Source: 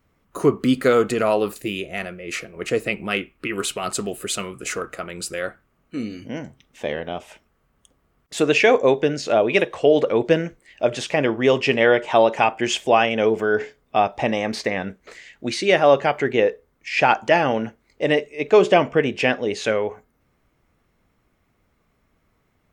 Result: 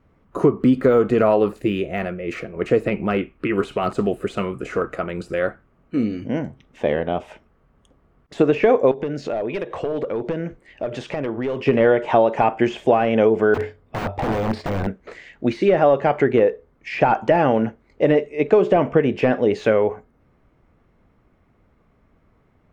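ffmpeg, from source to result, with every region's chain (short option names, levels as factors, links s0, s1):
-filter_complex "[0:a]asettb=1/sr,asplit=3[s0][s1][s2];[s0]atrim=end=8.914[s3];[s1]atrim=start=8.91:end=11.66,asetpts=PTS-STARTPTS,afade=t=in:d=0.004:c=qsin,afade=t=out:st=2.746:d=0.004:c=qsin,aeval=exprs='clip(val(0),-1,0.224)':c=same,acompressor=threshold=0.0355:ratio=5:attack=3.2:release=140:knee=1:detection=peak[s4];[s2]atrim=start=11.656[s5];[s3][s4]acrossfade=d=0.004:c1=hsin:c2=qsin[s6];[s6][s5]acrossfade=d=0.004:c1=qsin:c2=hsin,asettb=1/sr,asplit=3[s7][s8][s9];[s7]atrim=end=13.544[s10];[s8]atrim=start=13.54:end=14.87,asetpts=PTS-STARTPTS,afade=t=in:d=0.004:c=qsin,afade=t=out:st=1.326:d=0.004:c=qsin,equalizer=f=95:w=7.5:g=14,bandreject=f=6200:w=5.7,aeval=exprs='(mod(9.44*val(0)+1,2)-1)/9.44':c=same[s11];[s9]atrim=start=14.866[s12];[s10][s11]acrossfade=d=0.004:c1=hsin:c2=qsin[s13];[s13][s12]acrossfade=d=0.004:c1=qsin:c2=hsin,deesser=0.8,lowpass=f=1100:p=1,acompressor=threshold=0.112:ratio=6,volume=2.37"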